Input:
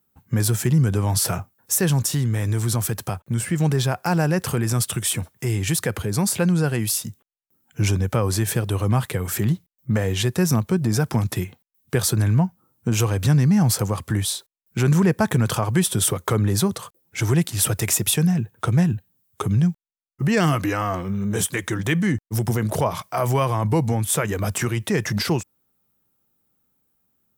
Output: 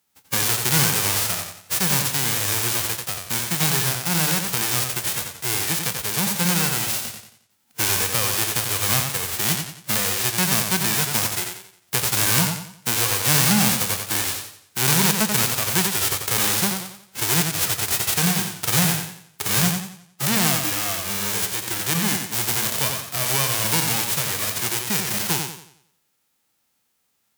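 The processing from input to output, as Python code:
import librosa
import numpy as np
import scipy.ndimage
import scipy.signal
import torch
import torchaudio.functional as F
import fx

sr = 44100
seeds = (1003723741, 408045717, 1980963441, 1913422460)

y = fx.envelope_flatten(x, sr, power=0.1)
y = fx.echo_warbled(y, sr, ms=89, feedback_pct=40, rate_hz=2.8, cents=98, wet_db=-5.5)
y = y * librosa.db_to_amplitude(-2.0)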